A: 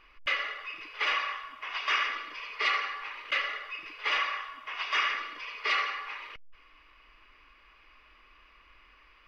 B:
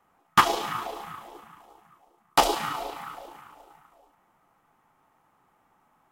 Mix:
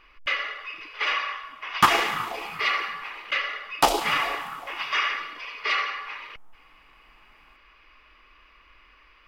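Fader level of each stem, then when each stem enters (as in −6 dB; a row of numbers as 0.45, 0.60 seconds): +3.0, +0.5 decibels; 0.00, 1.45 seconds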